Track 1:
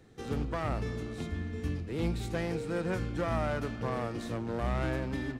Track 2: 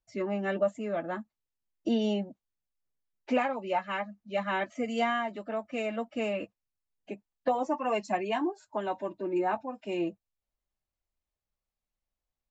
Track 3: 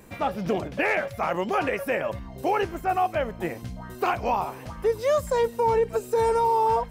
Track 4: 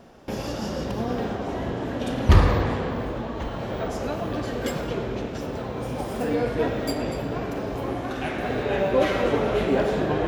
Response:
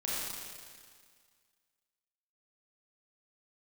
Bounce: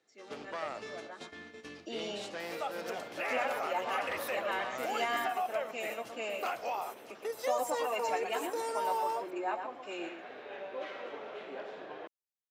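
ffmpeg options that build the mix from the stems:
-filter_complex "[0:a]lowpass=5600,volume=-1.5dB[link_01];[1:a]dynaudnorm=framelen=340:gausssize=9:maxgain=12dB,volume=-16.5dB,asplit=2[link_02][link_03];[link_03]volume=-7dB[link_04];[2:a]aecho=1:1:1.5:0.39,adelay=2400,volume=-6dB[link_05];[3:a]lowpass=3200,adelay=1800,volume=-17.5dB[link_06];[link_01][link_05]amix=inputs=2:normalize=0,agate=range=-11dB:threshold=-38dB:ratio=16:detection=peak,alimiter=level_in=2dB:limit=-24dB:level=0:latency=1:release=184,volume=-2dB,volume=0dB[link_07];[link_04]aecho=0:1:119:1[link_08];[link_02][link_06][link_07][link_08]amix=inputs=4:normalize=0,highpass=480,highshelf=frequency=3600:gain=8.5"

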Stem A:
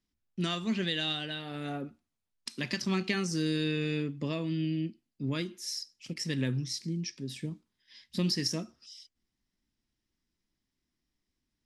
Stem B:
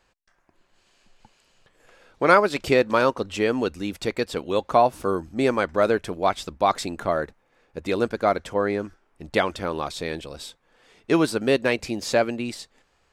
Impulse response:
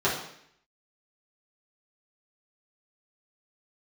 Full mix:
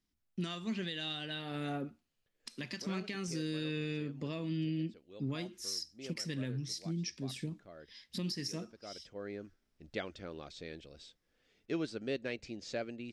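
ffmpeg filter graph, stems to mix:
-filter_complex "[0:a]alimiter=level_in=4dB:limit=-24dB:level=0:latency=1:release=462,volume=-4dB,volume=-0.5dB,asplit=2[link_01][link_02];[1:a]lowpass=frequency=6600:width=0.5412,lowpass=frequency=6600:width=1.3066,equalizer=frequency=970:width_type=o:width=0.87:gain=-12,adelay=600,volume=-15dB[link_03];[link_02]apad=whole_len=605452[link_04];[link_03][link_04]sidechaincompress=threshold=-49dB:ratio=16:attack=43:release=863[link_05];[link_01][link_05]amix=inputs=2:normalize=0"

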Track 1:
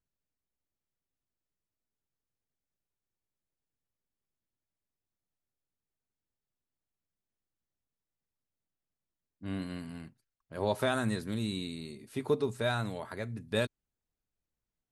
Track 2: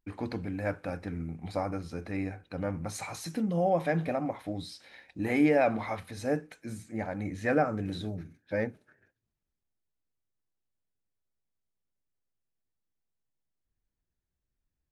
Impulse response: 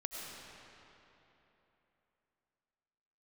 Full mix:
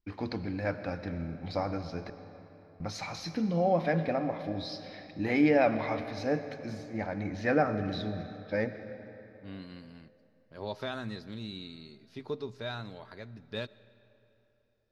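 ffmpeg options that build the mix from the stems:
-filter_complex "[0:a]volume=-8dB,asplit=2[link_01][link_02];[link_02]volume=-18dB[link_03];[1:a]adynamicequalizer=threshold=0.00158:dfrequency=6600:dqfactor=0.78:tfrequency=6600:tqfactor=0.78:attack=5:release=100:ratio=0.375:range=2.5:mode=cutabove:tftype=bell,volume=-2.5dB,asplit=3[link_04][link_05][link_06];[link_04]atrim=end=2.1,asetpts=PTS-STARTPTS,afade=type=out:start_time=2.096:duration=0.004:curve=hsin[link_07];[link_05]atrim=start=2.1:end=2.8,asetpts=PTS-STARTPTS,volume=0[link_08];[link_06]atrim=start=2.8,asetpts=PTS-STARTPTS,afade=type=in:duration=0.004:curve=hsin[link_09];[link_07][link_08][link_09]concat=n=3:v=0:a=1,asplit=2[link_10][link_11];[link_11]volume=-6.5dB[link_12];[2:a]atrim=start_sample=2205[link_13];[link_03][link_12]amix=inputs=2:normalize=0[link_14];[link_14][link_13]afir=irnorm=-1:irlink=0[link_15];[link_01][link_10][link_15]amix=inputs=3:normalize=0,highshelf=frequency=6700:width_type=q:width=3:gain=-10.5"

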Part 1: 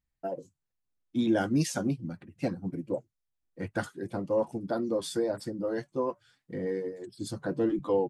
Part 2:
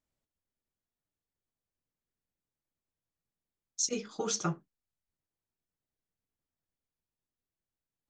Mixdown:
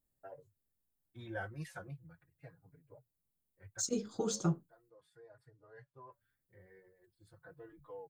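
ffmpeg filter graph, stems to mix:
ffmpeg -i stem1.wav -i stem2.wav -filter_complex "[0:a]firequalizer=gain_entry='entry(130,0);entry(220,-26);entry(430,-6);entry(1700,5);entry(3100,-11);entry(4900,-17)':delay=0.05:min_phase=1,asplit=2[link_01][link_02];[link_02]adelay=4.4,afreqshift=-0.36[link_03];[link_01][link_03]amix=inputs=2:normalize=1,volume=-7dB,afade=type=out:start_time=1.71:duration=0.64:silence=0.334965[link_04];[1:a]equalizer=frequency=2400:width_type=o:width=2.2:gain=-13.5,bandreject=frequency=5800:width=12,volume=-0.5dB,asplit=3[link_05][link_06][link_07];[link_05]atrim=end=4.9,asetpts=PTS-STARTPTS,afade=type=out:start_time=4.896:duration=0.004:curve=hsin[link_08];[link_06]atrim=start=4.9:end=6.12,asetpts=PTS-STARTPTS,volume=0[link_09];[link_07]atrim=start=6.12,asetpts=PTS-STARTPTS,afade=type=in:duration=0.004:curve=hsin[link_10];[link_08][link_09][link_10]concat=n=3:v=0:a=1,asplit=2[link_11][link_12];[link_12]apad=whole_len=361504[link_13];[link_04][link_13]sidechaincompress=threshold=-46dB:ratio=4:attack=22:release=1130[link_14];[link_14][link_11]amix=inputs=2:normalize=0,lowshelf=frequency=330:gain=4,aexciter=amount=1:drive=8.5:freq=3300" out.wav

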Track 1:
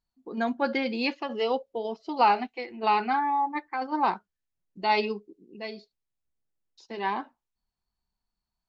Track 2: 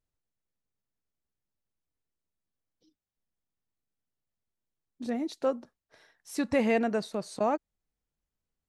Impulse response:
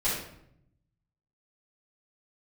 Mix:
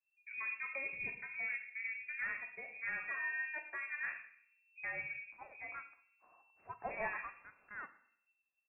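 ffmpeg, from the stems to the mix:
-filter_complex "[0:a]lowshelf=frequency=130:gain=8,alimiter=limit=-19.5dB:level=0:latency=1:release=349,volume=-13.5dB,asplit=3[link_01][link_02][link_03];[link_02]volume=-14dB[link_04];[link_03]volume=-15.5dB[link_05];[1:a]highpass=frequency=1400:width=0.5412,highpass=frequency=1400:width=1.3066,adelay=300,volume=-4dB,asplit=2[link_06][link_07];[link_07]volume=-19.5dB[link_08];[2:a]atrim=start_sample=2205[link_09];[link_04][link_08]amix=inputs=2:normalize=0[link_10];[link_10][link_09]afir=irnorm=-1:irlink=0[link_11];[link_05]aecho=0:1:113:1[link_12];[link_01][link_06][link_11][link_12]amix=inputs=4:normalize=0,aeval=exprs='0.0631*(cos(1*acos(clip(val(0)/0.0631,-1,1)))-cos(1*PI/2))+0.00141*(cos(8*acos(clip(val(0)/0.0631,-1,1)))-cos(8*PI/2))':channel_layout=same,lowpass=frequency=2300:width_type=q:width=0.5098,lowpass=frequency=2300:width_type=q:width=0.6013,lowpass=frequency=2300:width_type=q:width=0.9,lowpass=frequency=2300:width_type=q:width=2.563,afreqshift=-2700"

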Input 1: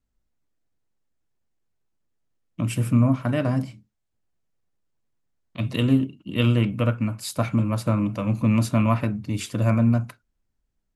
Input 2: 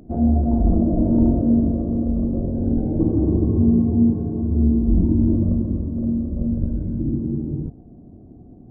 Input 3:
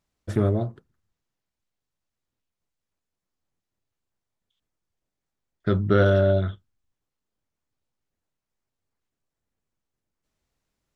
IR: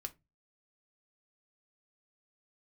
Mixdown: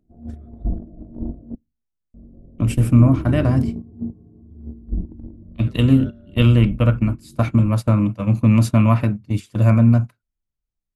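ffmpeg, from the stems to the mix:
-filter_complex "[0:a]volume=2.5dB[link_01];[1:a]volume=-12dB,asplit=3[link_02][link_03][link_04];[link_02]atrim=end=1.55,asetpts=PTS-STARTPTS,afade=type=out:start_time=1.546:duration=0.004:curve=hsin[link_05];[link_03]atrim=start=1.55:end=2.14,asetpts=PTS-STARTPTS,volume=0[link_06];[link_04]atrim=start=2.14,asetpts=PTS-STARTPTS,afade=type=in:duration=0.004:curve=hsin[link_07];[link_05][link_06][link_07]concat=n=3:v=0:a=1,asplit=2[link_08][link_09];[link_09]volume=-5.5dB[link_10];[2:a]acompressor=threshold=-24dB:ratio=6,alimiter=limit=-22dB:level=0:latency=1:release=138,volume=-6dB[link_11];[3:a]atrim=start_sample=2205[link_12];[link_10][link_12]afir=irnorm=-1:irlink=0[link_13];[link_01][link_08][link_11][link_13]amix=inputs=4:normalize=0,agate=range=-17dB:threshold=-23dB:ratio=16:detection=peak,lowshelf=frequency=150:gain=7.5"

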